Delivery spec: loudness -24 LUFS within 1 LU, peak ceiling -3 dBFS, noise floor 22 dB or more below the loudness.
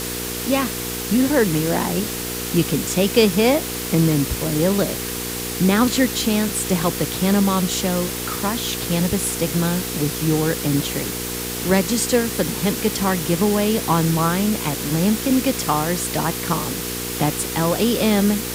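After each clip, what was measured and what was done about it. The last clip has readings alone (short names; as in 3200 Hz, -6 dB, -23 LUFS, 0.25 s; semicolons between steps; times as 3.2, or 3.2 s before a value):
hum 60 Hz; harmonics up to 480 Hz; hum level -28 dBFS; noise floor -27 dBFS; noise floor target -42 dBFS; loudness -20.0 LUFS; peak -2.5 dBFS; loudness target -24.0 LUFS
-> de-hum 60 Hz, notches 8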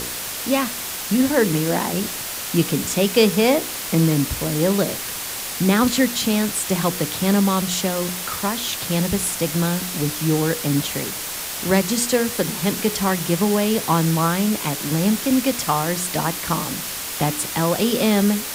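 hum none; noise floor -29 dBFS; noise floor target -43 dBFS
-> denoiser 14 dB, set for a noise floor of -29 dBFS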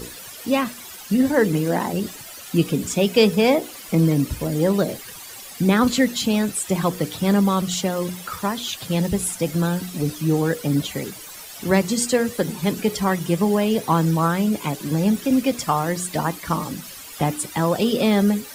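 noise floor -39 dBFS; noise floor target -44 dBFS
-> denoiser 6 dB, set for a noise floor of -39 dBFS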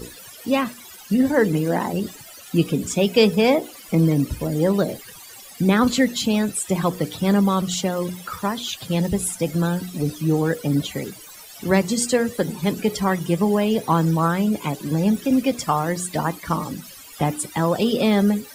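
noise floor -42 dBFS; noise floor target -44 dBFS
-> denoiser 6 dB, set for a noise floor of -42 dBFS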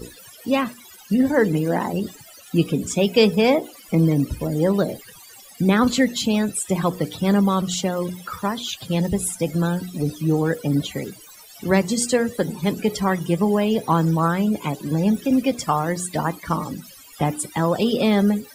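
noise floor -45 dBFS; loudness -21.5 LUFS; peak -3.0 dBFS; loudness target -24.0 LUFS
-> gain -2.5 dB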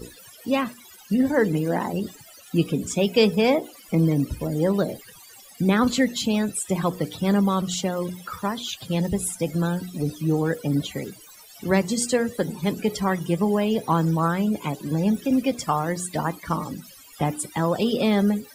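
loudness -24.0 LUFS; peak -5.5 dBFS; noise floor -48 dBFS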